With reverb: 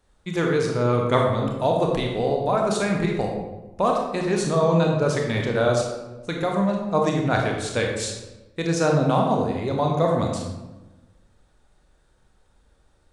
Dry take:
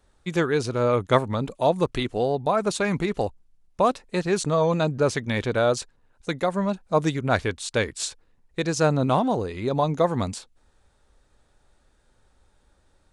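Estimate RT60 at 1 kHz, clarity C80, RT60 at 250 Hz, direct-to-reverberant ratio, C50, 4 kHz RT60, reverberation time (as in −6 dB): 1.0 s, 5.0 dB, 1.4 s, 0.5 dB, 3.0 dB, 0.70 s, 1.1 s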